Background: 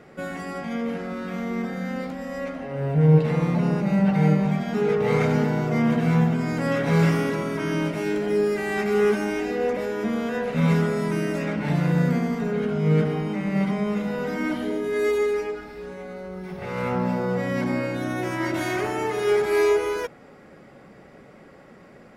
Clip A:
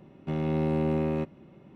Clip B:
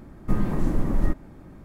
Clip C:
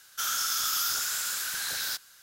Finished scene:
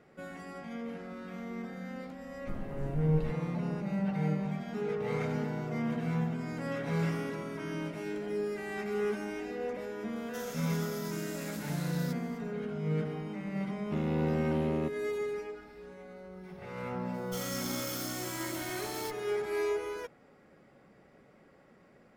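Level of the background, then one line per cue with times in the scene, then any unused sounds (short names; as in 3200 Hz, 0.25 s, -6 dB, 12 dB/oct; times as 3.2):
background -12 dB
2.19 add B -16.5 dB
10.16 add C -11.5 dB + limiter -27 dBFS
13.64 add A -3.5 dB
17.14 add C -9.5 dB + minimum comb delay 0.92 ms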